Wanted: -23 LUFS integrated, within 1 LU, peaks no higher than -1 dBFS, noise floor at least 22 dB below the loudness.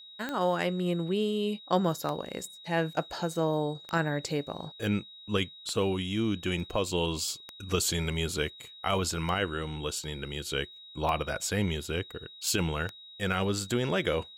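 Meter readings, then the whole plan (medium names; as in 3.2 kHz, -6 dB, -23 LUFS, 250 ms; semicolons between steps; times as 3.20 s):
clicks found 8; steady tone 3.8 kHz; tone level -47 dBFS; loudness -31.0 LUFS; peak level -13.0 dBFS; loudness target -23.0 LUFS
-> de-click; band-stop 3.8 kHz, Q 30; trim +8 dB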